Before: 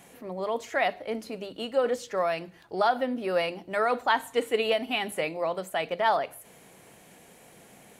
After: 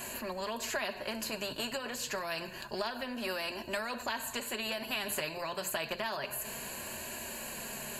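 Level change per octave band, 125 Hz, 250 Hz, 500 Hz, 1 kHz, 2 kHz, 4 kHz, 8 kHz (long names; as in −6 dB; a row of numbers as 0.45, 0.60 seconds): −3.5, −6.0, −11.5, −11.5, −5.0, −1.5, +7.5 decibels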